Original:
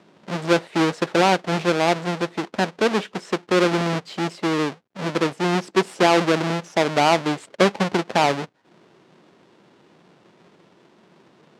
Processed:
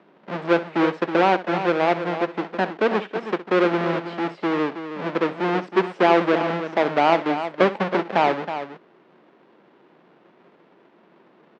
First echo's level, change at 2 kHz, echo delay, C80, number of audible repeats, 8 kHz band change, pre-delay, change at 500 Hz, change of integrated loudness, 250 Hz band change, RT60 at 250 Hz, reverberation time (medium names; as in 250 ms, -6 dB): -15.5 dB, -1.0 dB, 65 ms, no reverb, 2, under -15 dB, no reverb, +0.5 dB, -0.5 dB, -1.0 dB, no reverb, no reverb